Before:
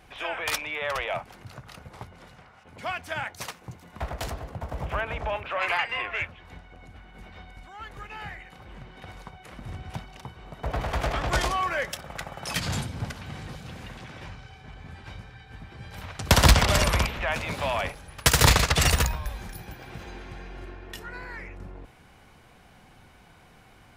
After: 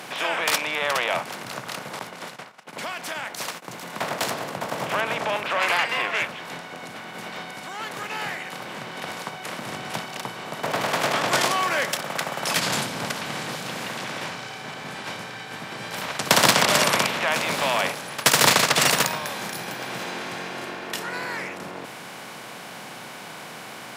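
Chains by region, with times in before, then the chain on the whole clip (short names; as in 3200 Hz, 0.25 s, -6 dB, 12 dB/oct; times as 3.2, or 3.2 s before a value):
1.99–3.77 HPF 130 Hz 6 dB/oct + gate -52 dBFS, range -27 dB + compressor 3:1, threshold -41 dBFS
whole clip: per-bin compression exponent 0.6; Bessel high-pass 240 Hz, order 8; gain +1 dB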